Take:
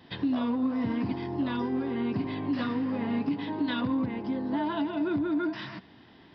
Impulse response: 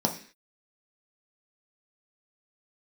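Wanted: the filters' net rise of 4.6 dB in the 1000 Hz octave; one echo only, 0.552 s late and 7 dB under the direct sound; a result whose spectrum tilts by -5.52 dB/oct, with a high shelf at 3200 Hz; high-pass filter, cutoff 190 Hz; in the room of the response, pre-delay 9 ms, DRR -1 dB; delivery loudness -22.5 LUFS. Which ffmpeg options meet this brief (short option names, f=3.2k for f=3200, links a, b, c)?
-filter_complex "[0:a]highpass=190,equalizer=f=1k:t=o:g=5,highshelf=f=3.2k:g=3,aecho=1:1:552:0.447,asplit=2[a][b];[1:a]atrim=start_sample=2205,adelay=9[c];[b][c]afir=irnorm=-1:irlink=0,volume=-9dB[d];[a][d]amix=inputs=2:normalize=0,volume=-1dB"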